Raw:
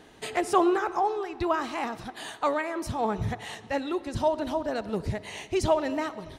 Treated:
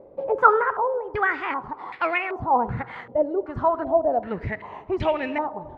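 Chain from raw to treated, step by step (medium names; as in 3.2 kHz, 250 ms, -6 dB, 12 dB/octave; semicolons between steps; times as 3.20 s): gliding tape speed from 126% -> 95%; step-sequenced low-pass 2.6 Hz 570–2400 Hz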